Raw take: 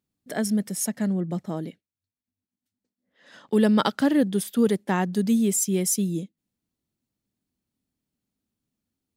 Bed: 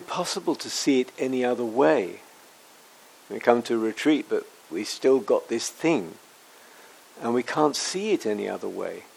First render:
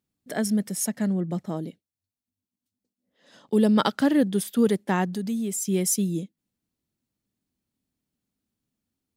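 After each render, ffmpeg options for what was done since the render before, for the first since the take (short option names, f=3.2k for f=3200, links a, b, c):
-filter_complex "[0:a]asettb=1/sr,asplit=3[a][b][c];[a]atrim=end=1.574[d];[b]atrim=start=1.57:end=3.76,asetpts=PTS-STARTPTS,afade=t=in:d=0.004:c=qsin,afade=t=out:st=2.186:d=0.004:c=qsin,equalizer=f=1.7k:t=o:w=1.4:g=-8.5[e];[c]atrim=start=3.756[f];[d][e]acrossfade=d=0.004:c1=hsin:c2=qsin[g];[g][f]acrossfade=d=0.004:c1=qsin:c2=hsin,asettb=1/sr,asplit=3[h][i][j];[h]atrim=end=5.054[k];[i]atrim=start=5.05:end=5.65,asetpts=PTS-STARTPTS,afade=t=in:d=0.004:c=qsin,afade=t=out:st=0.596:d=0.004:c=qsin,acompressor=threshold=-30dB:ratio=2:attack=3.2:release=140:knee=1:detection=peak[l];[j]atrim=start=5.646[m];[k][l]acrossfade=d=0.004:c1=hsin:c2=qsin[n];[n][m]acrossfade=d=0.004:c1=qsin:c2=hsin"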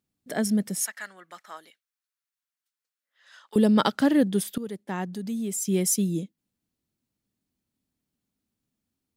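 -filter_complex "[0:a]asettb=1/sr,asplit=3[a][b][c];[a]atrim=end=0.834[d];[b]atrim=start=0.83:end=3.56,asetpts=PTS-STARTPTS,afade=t=in:d=0.004:c=qsin,afade=t=out:st=2.726:d=0.004:c=qsin,highpass=f=1.4k:t=q:w=2.2[e];[c]atrim=start=3.556[f];[d][e]acrossfade=d=0.004:c1=hsin:c2=qsin[g];[g][f]acrossfade=d=0.004:c1=qsin:c2=hsin,asplit=2[h][i];[h]atrim=end=4.58,asetpts=PTS-STARTPTS,afade=t=out:st=4.576:d=0.004:c=hsin:silence=0.133352[j];[i]atrim=start=4.58,asetpts=PTS-STARTPTS,afade=t=in:d=1.09:silence=0.133352[k];[j][k]concat=n=2:v=0:a=1"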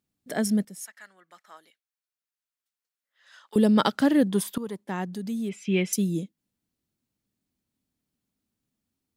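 -filter_complex "[0:a]asettb=1/sr,asplit=3[a][b][c];[a]atrim=end=4.304[d];[b]atrim=start=4.3:end=4.84,asetpts=PTS-STARTPTS,afade=t=in:d=0.004:c=qsin,afade=t=out:st=0.536:d=0.004:c=qsin,equalizer=f=1k:t=o:w=0.47:g=14[e];[c]atrim=start=4.836[f];[d][e]acrossfade=d=0.004:c1=hsin:c2=qsin[g];[g][f]acrossfade=d=0.004:c1=qsin:c2=hsin,asettb=1/sr,asplit=3[h][i][j];[h]atrim=end=5.494[k];[i]atrim=start=5.49:end=5.93,asetpts=PTS-STARTPTS,afade=t=in:d=0.004:c=qsin,afade=t=out:st=0.436:d=0.004:c=qsin,lowpass=f=2.6k:t=q:w=4.6[l];[j]atrim=start=5.926[m];[k][l]acrossfade=d=0.004:c1=hsin:c2=qsin[n];[n][m]acrossfade=d=0.004:c1=qsin:c2=hsin,asplit=2[o][p];[o]atrim=end=0.65,asetpts=PTS-STARTPTS,afade=t=out:st=0.646:d=0.004:c=hsin:silence=0.223872[q];[p]atrim=start=0.65,asetpts=PTS-STARTPTS,afade=t=in:d=3.05:silence=0.223872[r];[q][r]concat=n=2:v=0:a=1"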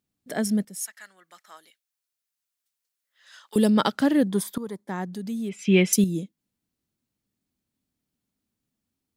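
-filter_complex "[0:a]asettb=1/sr,asplit=3[a][b][c];[a]atrim=end=0.734[d];[b]atrim=start=0.73:end=3.7,asetpts=PTS-STARTPTS,afade=t=in:d=0.004:c=qsin,afade=t=out:st=2.966:d=0.004:c=qsin,highshelf=f=2.9k:g=8[e];[c]atrim=start=3.696[f];[d][e]acrossfade=d=0.004:c1=hsin:c2=qsin[g];[g][f]acrossfade=d=0.004:c1=qsin:c2=hsin,asettb=1/sr,asplit=3[h][i][j];[h]atrim=end=4.244[k];[i]atrim=start=4.24:end=5.08,asetpts=PTS-STARTPTS,afade=t=in:d=0.004:c=qsin,afade=t=out:st=0.836:d=0.004:c=qsin,equalizer=f=2.8k:w=5.9:g=-12[l];[j]atrim=start=5.076[m];[k][l]acrossfade=d=0.004:c1=hsin:c2=qsin[n];[n][m]acrossfade=d=0.004:c1=qsin:c2=hsin,asplit=3[o][p][q];[o]atrim=end=5.592[r];[p]atrim=start=5.588:end=6.042,asetpts=PTS-STARTPTS,volume=6dB[s];[q]atrim=start=6.038[t];[r][s]acrossfade=d=0.004:c1=hsin:c2=hsin[u];[u][t]acrossfade=d=0.004:c1=hsin:c2=hsin"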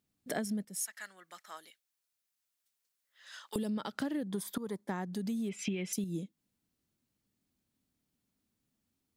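-af "alimiter=limit=-16dB:level=0:latency=1:release=120,acompressor=threshold=-32dB:ratio=12"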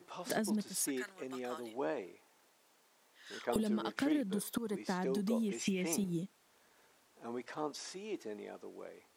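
-filter_complex "[1:a]volume=-18dB[a];[0:a][a]amix=inputs=2:normalize=0"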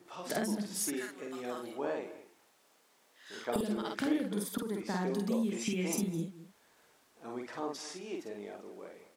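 -filter_complex "[0:a]asplit=2[a][b];[b]adelay=49,volume=-3dB[c];[a][c]amix=inputs=2:normalize=0,asplit=2[d][e];[e]adelay=209.9,volume=-16dB,highshelf=f=4k:g=-4.72[f];[d][f]amix=inputs=2:normalize=0"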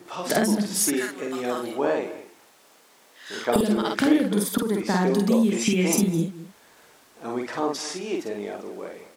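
-af "volume=12dB"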